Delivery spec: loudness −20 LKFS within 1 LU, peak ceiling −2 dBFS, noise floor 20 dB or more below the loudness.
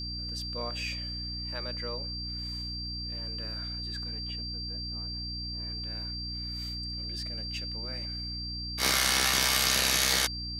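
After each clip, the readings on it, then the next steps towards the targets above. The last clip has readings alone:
mains hum 60 Hz; hum harmonics up to 300 Hz; level of the hum −37 dBFS; interfering tone 4,700 Hz; level of the tone −36 dBFS; integrated loudness −30.0 LKFS; sample peak −11.5 dBFS; target loudness −20.0 LKFS
→ mains-hum notches 60/120/180/240/300 Hz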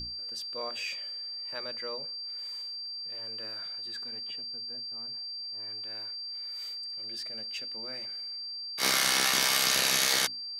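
mains hum none found; interfering tone 4,700 Hz; level of the tone −36 dBFS
→ notch filter 4,700 Hz, Q 30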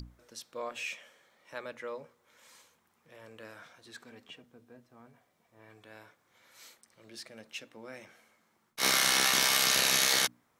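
interfering tone none found; integrated loudness −26.0 LKFS; sample peak −13.0 dBFS; target loudness −20.0 LKFS
→ level +6 dB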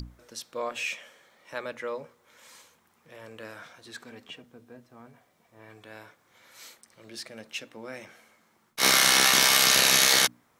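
integrated loudness −20.0 LKFS; sample peak −7.0 dBFS; background noise floor −67 dBFS

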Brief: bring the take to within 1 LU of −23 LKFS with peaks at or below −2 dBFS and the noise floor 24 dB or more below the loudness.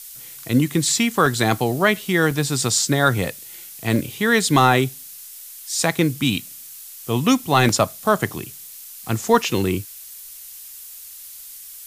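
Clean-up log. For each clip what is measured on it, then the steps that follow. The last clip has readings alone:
number of dropouts 4; longest dropout 2.4 ms; background noise floor −39 dBFS; target noise floor −44 dBFS; integrated loudness −19.5 LKFS; sample peak −3.5 dBFS; target loudness −23.0 LKFS
→ repair the gap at 0:01.26/0:02.31/0:03.96/0:07.69, 2.4 ms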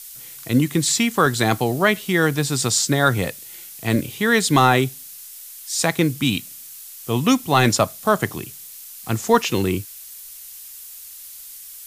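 number of dropouts 0; background noise floor −39 dBFS; target noise floor −44 dBFS
→ broadband denoise 6 dB, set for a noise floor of −39 dBFS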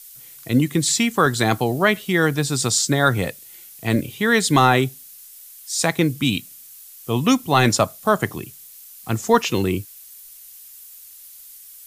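background noise floor −43 dBFS; target noise floor −44 dBFS
→ broadband denoise 6 dB, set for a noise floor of −43 dBFS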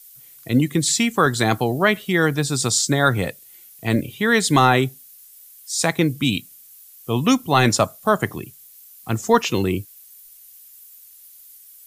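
background noise floor −47 dBFS; integrated loudness −19.5 LKFS; sample peak −3.5 dBFS; target loudness −23.0 LKFS
→ level −3.5 dB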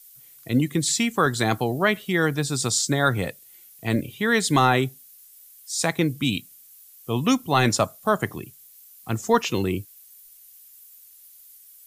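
integrated loudness −23.0 LKFS; sample peak −7.0 dBFS; background noise floor −50 dBFS

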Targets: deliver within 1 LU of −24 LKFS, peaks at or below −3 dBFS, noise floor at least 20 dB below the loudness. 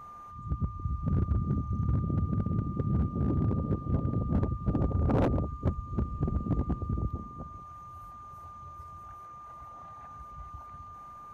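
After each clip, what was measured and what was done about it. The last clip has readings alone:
share of clipped samples 1.0%; peaks flattened at −21.0 dBFS; interfering tone 1,200 Hz; level of the tone −44 dBFS; integrated loudness −31.0 LKFS; sample peak −21.0 dBFS; target loudness −24.0 LKFS
→ clipped peaks rebuilt −21 dBFS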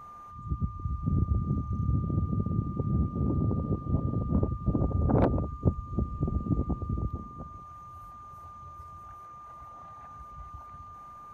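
share of clipped samples 0.0%; interfering tone 1,200 Hz; level of the tone −44 dBFS
→ notch filter 1,200 Hz, Q 30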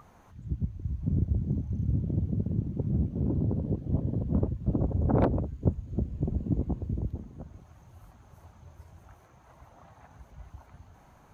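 interfering tone none found; integrated loudness −30.5 LKFS; sample peak −12.0 dBFS; target loudness −24.0 LKFS
→ level +6.5 dB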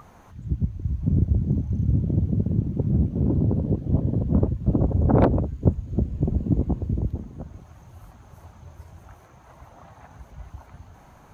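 integrated loudness −24.0 LKFS; sample peak −5.5 dBFS; background noise floor −51 dBFS

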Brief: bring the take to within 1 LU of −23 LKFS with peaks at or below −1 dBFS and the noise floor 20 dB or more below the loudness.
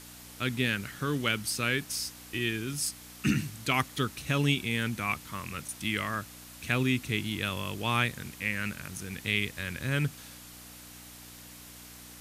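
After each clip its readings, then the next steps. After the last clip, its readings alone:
mains hum 60 Hz; hum harmonics up to 300 Hz; level of the hum −53 dBFS; background noise floor −49 dBFS; target noise floor −51 dBFS; integrated loudness −31.0 LKFS; sample peak −12.0 dBFS; target loudness −23.0 LKFS
→ hum removal 60 Hz, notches 5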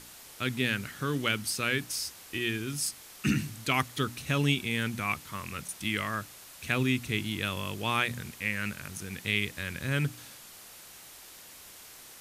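mains hum none found; background noise floor −50 dBFS; target noise floor −51 dBFS
→ noise reduction from a noise print 6 dB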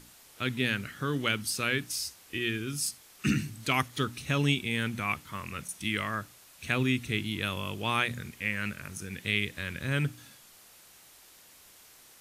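background noise floor −56 dBFS; integrated loudness −31.0 LKFS; sample peak −12.0 dBFS; target loudness −23.0 LKFS
→ level +8 dB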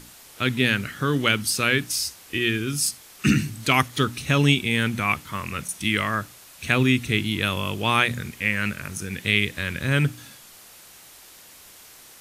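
integrated loudness −23.0 LKFS; sample peak −4.0 dBFS; background noise floor −48 dBFS

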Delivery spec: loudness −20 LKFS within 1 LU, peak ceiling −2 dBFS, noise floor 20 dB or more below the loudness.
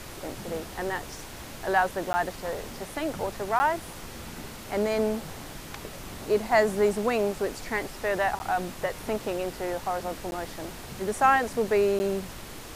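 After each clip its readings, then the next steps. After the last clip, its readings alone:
number of dropouts 5; longest dropout 10 ms; background noise floor −42 dBFS; target noise floor −48 dBFS; integrated loudness −28.0 LKFS; sample peak −9.0 dBFS; target loudness −20.0 LKFS
→ repair the gap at 0:02.13/0:03.59/0:08.39/0:10.31/0:11.99, 10 ms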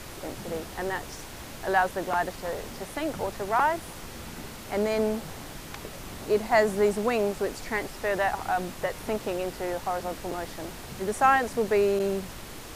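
number of dropouts 0; background noise floor −42 dBFS; target noise floor −48 dBFS
→ noise reduction from a noise print 6 dB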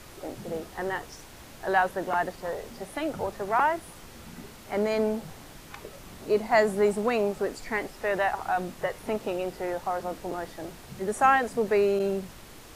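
background noise floor −48 dBFS; integrated loudness −28.0 LKFS; sample peak −9.0 dBFS; target loudness −20.0 LKFS
→ level +8 dB
brickwall limiter −2 dBFS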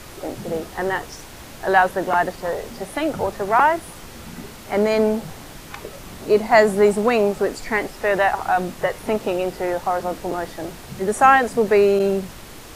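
integrated loudness −20.0 LKFS; sample peak −2.0 dBFS; background noise floor −40 dBFS

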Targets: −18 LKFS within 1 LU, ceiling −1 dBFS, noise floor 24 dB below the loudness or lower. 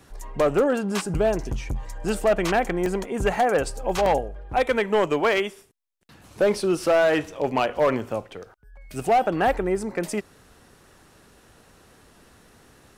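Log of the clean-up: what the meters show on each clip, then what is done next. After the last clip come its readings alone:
share of clipped samples 1.3%; peaks flattened at −14.0 dBFS; number of dropouts 2; longest dropout 1.3 ms; integrated loudness −23.5 LKFS; sample peak −14.0 dBFS; target loudness −18.0 LKFS
→ clipped peaks rebuilt −14 dBFS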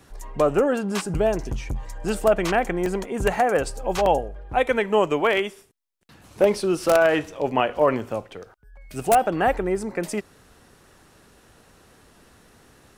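share of clipped samples 0.0%; number of dropouts 2; longest dropout 1.3 ms
→ repair the gap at 0:02.86/0:04.06, 1.3 ms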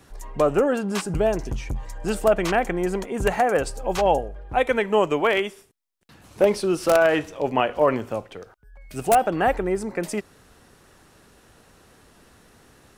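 number of dropouts 0; integrated loudness −23.0 LKFS; sample peak −5.0 dBFS; target loudness −18.0 LKFS
→ level +5 dB
brickwall limiter −1 dBFS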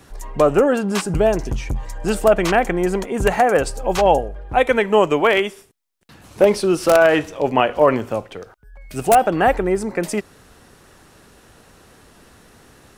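integrated loudness −18.0 LKFS; sample peak −1.0 dBFS; background noise floor −50 dBFS

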